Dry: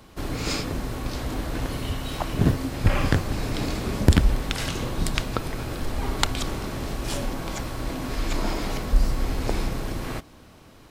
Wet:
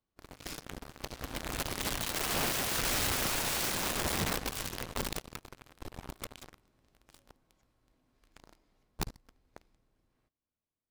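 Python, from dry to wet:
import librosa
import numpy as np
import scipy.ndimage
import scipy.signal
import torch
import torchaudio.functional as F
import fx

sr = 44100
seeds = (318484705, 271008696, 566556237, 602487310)

y = fx.doppler_pass(x, sr, speed_mps=7, closest_m=2.0, pass_at_s=2.97)
y = fx.leveller(y, sr, passes=5)
y = (np.mod(10.0 ** (17.5 / 20.0) * y + 1.0, 2.0) - 1.0) / 10.0 ** (17.5 / 20.0)
y = F.gain(torch.from_numpy(y), -9.0).numpy()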